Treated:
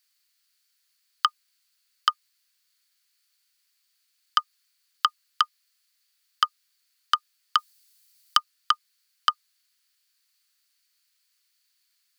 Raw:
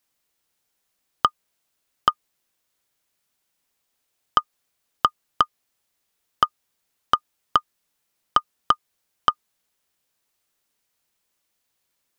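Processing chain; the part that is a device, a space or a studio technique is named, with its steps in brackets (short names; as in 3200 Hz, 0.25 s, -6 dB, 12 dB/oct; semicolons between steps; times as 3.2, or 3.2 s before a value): 7.58–8.37 high shelf 4200 Hz +11.5 dB; headphones lying on a table (HPF 1400 Hz 24 dB/oct; bell 4500 Hz +11 dB 0.23 oct); gain +2.5 dB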